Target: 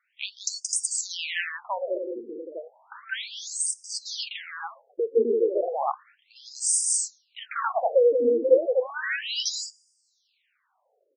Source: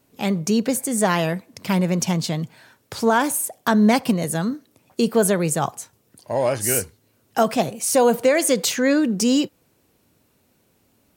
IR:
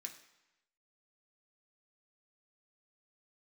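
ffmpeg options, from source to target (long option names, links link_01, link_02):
-filter_complex "[0:a]equalizer=frequency=300:width=1.9:gain=-10,aecho=1:1:174.9|256.6:0.631|0.794,asplit=2[link_01][link_02];[1:a]atrim=start_sample=2205,asetrate=43218,aresample=44100,highshelf=frequency=6300:gain=9[link_03];[link_02][link_03]afir=irnorm=-1:irlink=0,volume=-13dB[link_04];[link_01][link_04]amix=inputs=2:normalize=0,afftfilt=real='re*between(b*sr/1024,350*pow(6800/350,0.5+0.5*sin(2*PI*0.33*pts/sr))/1.41,350*pow(6800/350,0.5+0.5*sin(2*PI*0.33*pts/sr))*1.41)':imag='im*between(b*sr/1024,350*pow(6800/350,0.5+0.5*sin(2*PI*0.33*pts/sr))/1.41,350*pow(6800/350,0.5+0.5*sin(2*PI*0.33*pts/sr))*1.41)':win_size=1024:overlap=0.75"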